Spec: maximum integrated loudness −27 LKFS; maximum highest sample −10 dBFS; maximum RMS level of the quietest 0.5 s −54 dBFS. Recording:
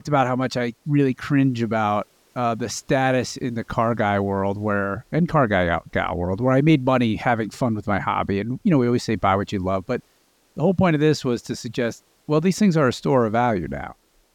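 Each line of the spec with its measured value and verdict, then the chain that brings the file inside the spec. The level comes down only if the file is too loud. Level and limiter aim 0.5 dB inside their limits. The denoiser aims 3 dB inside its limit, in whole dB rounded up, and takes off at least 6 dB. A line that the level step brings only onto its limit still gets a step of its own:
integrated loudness −21.5 LKFS: out of spec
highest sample −7.0 dBFS: out of spec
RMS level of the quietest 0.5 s −61 dBFS: in spec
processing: level −6 dB

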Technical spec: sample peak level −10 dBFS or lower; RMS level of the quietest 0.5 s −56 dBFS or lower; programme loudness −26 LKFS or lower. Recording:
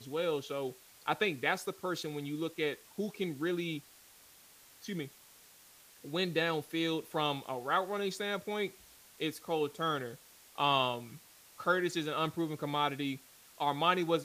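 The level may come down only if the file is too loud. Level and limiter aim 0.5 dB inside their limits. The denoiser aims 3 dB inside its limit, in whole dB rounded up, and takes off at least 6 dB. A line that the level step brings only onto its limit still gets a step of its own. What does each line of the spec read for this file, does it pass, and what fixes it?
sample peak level −14.0 dBFS: in spec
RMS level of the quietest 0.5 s −59 dBFS: in spec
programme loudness −34.5 LKFS: in spec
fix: no processing needed

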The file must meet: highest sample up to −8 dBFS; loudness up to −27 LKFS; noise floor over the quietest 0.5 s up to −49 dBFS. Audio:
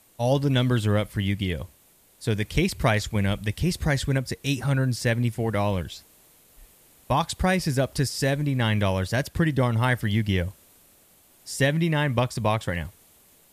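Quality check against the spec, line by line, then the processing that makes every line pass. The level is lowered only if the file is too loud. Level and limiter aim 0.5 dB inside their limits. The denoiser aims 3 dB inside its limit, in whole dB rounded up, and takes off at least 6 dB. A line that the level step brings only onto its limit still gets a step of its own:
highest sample −7.5 dBFS: out of spec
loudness −25.0 LKFS: out of spec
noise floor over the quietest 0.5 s −58 dBFS: in spec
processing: level −2.5 dB

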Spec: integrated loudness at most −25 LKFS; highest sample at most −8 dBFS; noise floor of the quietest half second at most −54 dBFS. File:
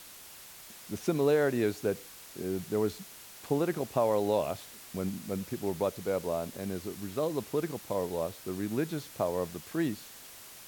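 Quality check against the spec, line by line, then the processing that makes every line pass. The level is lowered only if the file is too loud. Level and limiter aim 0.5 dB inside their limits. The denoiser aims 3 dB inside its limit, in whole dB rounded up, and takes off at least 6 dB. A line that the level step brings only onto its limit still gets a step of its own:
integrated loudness −32.5 LKFS: in spec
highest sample −14.5 dBFS: in spec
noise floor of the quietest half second −50 dBFS: out of spec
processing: broadband denoise 7 dB, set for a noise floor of −50 dBFS

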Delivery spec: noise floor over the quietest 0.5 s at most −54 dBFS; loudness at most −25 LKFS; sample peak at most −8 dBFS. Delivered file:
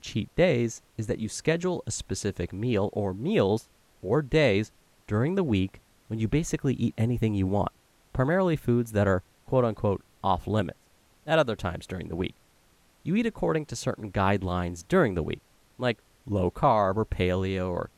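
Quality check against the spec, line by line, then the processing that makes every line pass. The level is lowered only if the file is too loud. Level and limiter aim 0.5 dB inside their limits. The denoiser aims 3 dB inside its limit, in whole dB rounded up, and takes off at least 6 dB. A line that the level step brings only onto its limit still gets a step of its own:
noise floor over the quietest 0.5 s −62 dBFS: in spec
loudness −27.5 LKFS: in spec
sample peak −10.0 dBFS: in spec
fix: no processing needed

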